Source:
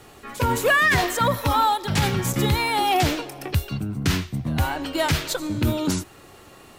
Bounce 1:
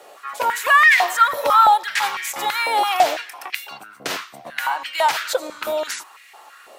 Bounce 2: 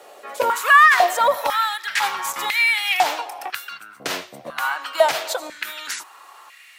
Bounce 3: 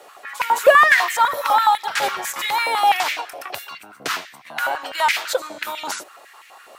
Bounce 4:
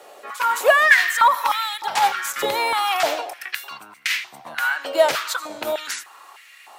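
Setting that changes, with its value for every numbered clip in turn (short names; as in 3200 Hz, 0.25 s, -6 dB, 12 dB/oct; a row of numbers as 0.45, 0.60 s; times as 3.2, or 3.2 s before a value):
stepped high-pass, rate: 6, 2, 12, 3.3 Hz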